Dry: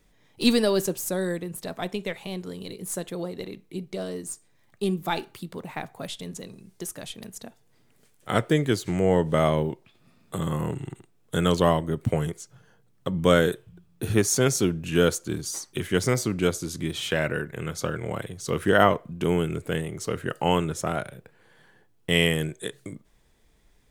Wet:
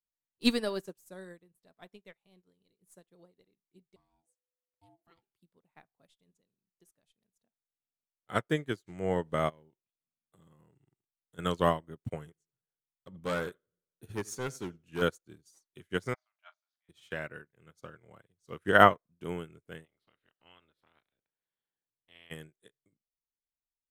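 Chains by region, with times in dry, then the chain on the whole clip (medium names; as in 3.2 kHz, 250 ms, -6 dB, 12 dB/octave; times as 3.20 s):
3.96–5.22 s: compression 2:1, threshold -32 dBFS + bass shelf 80 Hz +6.5 dB + ring modulator 500 Hz
9.49–11.39 s: compression 2.5:1, threshold -30 dBFS + companded quantiser 8-bit
12.21–15.02 s: tape echo 87 ms, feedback 59%, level -18 dB, low-pass 3.7 kHz + hard clipper -17.5 dBFS
16.14–16.89 s: brick-wall FIR band-pass 590–7100 Hz + distance through air 270 m + doubling 40 ms -8 dB
19.84–22.30 s: spectral peaks clipped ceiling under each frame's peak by 18 dB + resonant high shelf 5.1 kHz -9 dB, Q 3 + compression 2:1, threshold -38 dBFS
whole clip: dynamic bell 1.4 kHz, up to +5 dB, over -37 dBFS, Q 0.93; upward expansion 2.5:1, over -41 dBFS; trim -1 dB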